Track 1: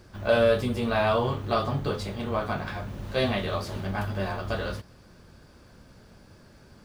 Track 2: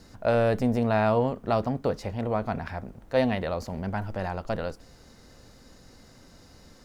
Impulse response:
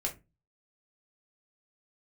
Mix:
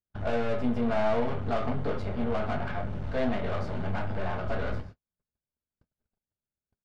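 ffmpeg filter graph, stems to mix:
-filter_complex "[0:a]highshelf=frequency=4700:gain=-10,acrossover=split=930|2100[link_01][link_02][link_03];[link_01]acompressor=threshold=-27dB:ratio=4[link_04];[link_02]acompressor=threshold=-33dB:ratio=4[link_05];[link_03]acompressor=threshold=-52dB:ratio=4[link_06];[link_04][link_05][link_06]amix=inputs=3:normalize=0,aeval=exprs='(tanh(56.2*val(0)+0.5)-tanh(0.5))/56.2':channel_layout=same,volume=0.5dB,asplit=2[link_07][link_08];[link_08]volume=-3.5dB[link_09];[1:a]volume=-1,adelay=1.9,volume=-11.5dB,asplit=2[link_10][link_11];[link_11]volume=-13dB[link_12];[2:a]atrim=start_sample=2205[link_13];[link_09][link_12]amix=inputs=2:normalize=0[link_14];[link_14][link_13]afir=irnorm=-1:irlink=0[link_15];[link_07][link_10][link_15]amix=inputs=3:normalize=0,aemphasis=mode=reproduction:type=50fm,agate=range=-50dB:threshold=-40dB:ratio=16:detection=peak"

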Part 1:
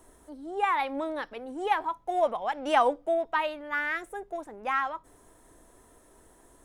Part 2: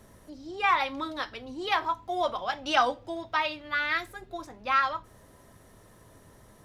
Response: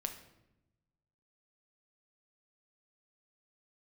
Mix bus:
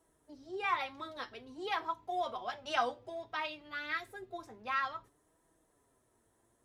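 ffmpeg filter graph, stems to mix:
-filter_complex "[0:a]volume=-11.5dB,asplit=2[link_01][link_02];[1:a]equalizer=frequency=390:width=5.6:gain=7,volume=-1,volume=-5.5dB[link_03];[link_02]apad=whole_len=292916[link_04];[link_03][link_04]sidechaingate=range=-17dB:threshold=-59dB:ratio=16:detection=peak[link_05];[link_01][link_05]amix=inputs=2:normalize=0,highpass=42,flanger=delay=6.1:depth=2.8:regen=47:speed=0.55:shape=sinusoidal"

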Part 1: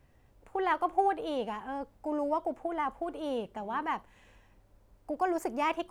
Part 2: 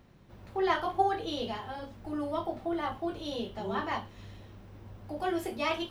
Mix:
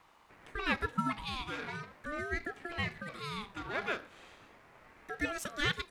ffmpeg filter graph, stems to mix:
ffmpeg -i stem1.wav -i stem2.wav -filter_complex "[0:a]highshelf=frequency=3800:gain=8,volume=-7.5dB,asplit=2[link_01][link_02];[1:a]acrossover=split=240|1300[link_03][link_04][link_05];[link_03]acompressor=threshold=-59dB:ratio=4[link_06];[link_04]acompressor=threshold=-39dB:ratio=4[link_07];[link_05]acompressor=threshold=-46dB:ratio=4[link_08];[link_06][link_07][link_08]amix=inputs=3:normalize=0,equalizer=frequency=1300:width=1.1:gain=9.5,adynamicsmooth=sensitivity=6.5:basefreq=890,adelay=0.4,volume=-3.5dB[link_09];[link_02]apad=whole_len=260618[link_10];[link_09][link_10]sidechaincompress=threshold=-47dB:ratio=8:attack=7.4:release=107[link_11];[link_01][link_11]amix=inputs=2:normalize=0,equalizer=frequency=3500:width_type=o:width=3:gain=14,aeval=exprs='val(0)*sin(2*PI*770*n/s+770*0.35/0.39*sin(2*PI*0.39*n/s))':channel_layout=same" out.wav

